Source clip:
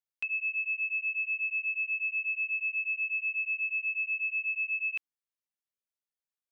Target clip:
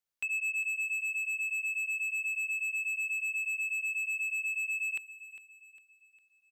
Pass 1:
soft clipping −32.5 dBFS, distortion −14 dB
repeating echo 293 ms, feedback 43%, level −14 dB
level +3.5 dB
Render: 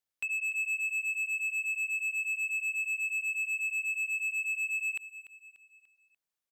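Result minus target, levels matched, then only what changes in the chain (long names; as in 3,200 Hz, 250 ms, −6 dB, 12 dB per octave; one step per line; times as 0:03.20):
echo 111 ms early
change: repeating echo 404 ms, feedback 43%, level −14 dB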